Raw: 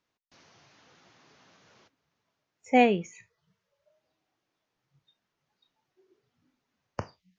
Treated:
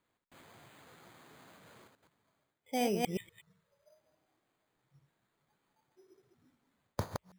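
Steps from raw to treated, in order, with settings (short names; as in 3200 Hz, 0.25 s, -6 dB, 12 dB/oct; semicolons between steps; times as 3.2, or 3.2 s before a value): reverse delay 0.122 s, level -7 dB; reverse; compressor 5:1, threshold -33 dBFS, peak gain reduction 16.5 dB; reverse; careless resampling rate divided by 8×, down filtered, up hold; gain +2.5 dB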